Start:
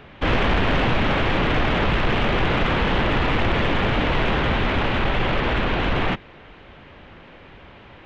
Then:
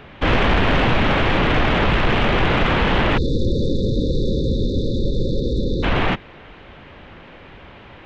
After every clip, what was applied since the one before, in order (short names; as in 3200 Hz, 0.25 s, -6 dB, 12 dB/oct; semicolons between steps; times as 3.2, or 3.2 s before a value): spectral delete 3.17–5.83, 560–3500 Hz; gain +3 dB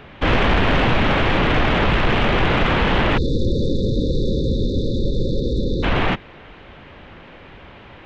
nothing audible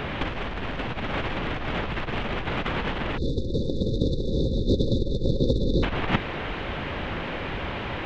negative-ratio compressor -24 dBFS, ratio -0.5; gain +1.5 dB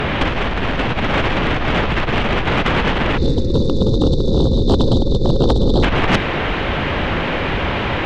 sine folder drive 8 dB, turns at -8.5 dBFS; on a send at -22 dB: reverb RT60 1.8 s, pre-delay 5 ms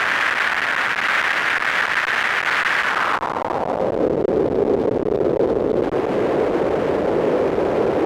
Schmitt trigger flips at -31.5 dBFS; band-pass sweep 1700 Hz -> 430 Hz, 2.79–4.15; gain +6 dB